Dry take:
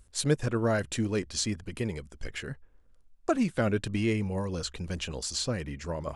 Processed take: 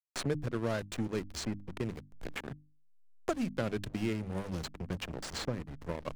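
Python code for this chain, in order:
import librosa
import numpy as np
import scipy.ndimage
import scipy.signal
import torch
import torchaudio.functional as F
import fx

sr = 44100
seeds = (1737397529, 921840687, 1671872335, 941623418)

y = fx.backlash(x, sr, play_db=-28.0)
y = fx.hum_notches(y, sr, base_hz=50, count=6)
y = fx.band_squash(y, sr, depth_pct=70)
y = y * 10.0 ** (-4.0 / 20.0)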